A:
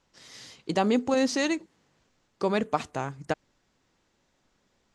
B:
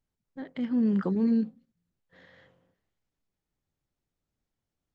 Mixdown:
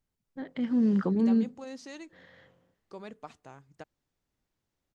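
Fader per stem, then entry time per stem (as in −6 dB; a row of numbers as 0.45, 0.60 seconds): −18.0, +0.5 decibels; 0.50, 0.00 seconds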